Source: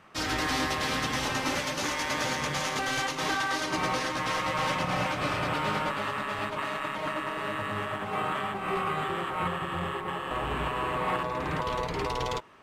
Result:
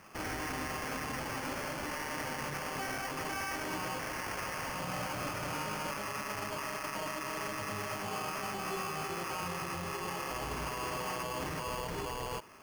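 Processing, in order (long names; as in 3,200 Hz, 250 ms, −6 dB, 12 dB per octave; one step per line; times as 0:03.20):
0:03.99–0:04.72: parametric band 5,100 Hz +14 dB 2.7 octaves
brickwall limiter −29.5 dBFS, peak gain reduction 18.5 dB
sample-rate reduction 3,800 Hz, jitter 0%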